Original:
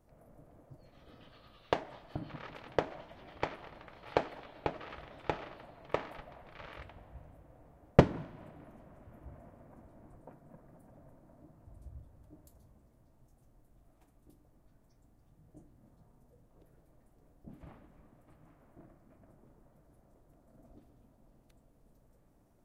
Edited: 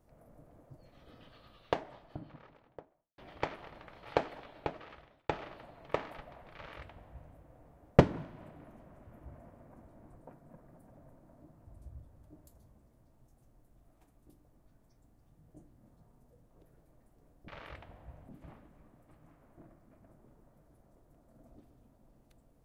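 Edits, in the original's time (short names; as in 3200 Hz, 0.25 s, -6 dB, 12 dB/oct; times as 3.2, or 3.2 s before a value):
1.4–3.18 studio fade out
4.23–5.29 fade out equal-power
6.55–7.36 copy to 17.48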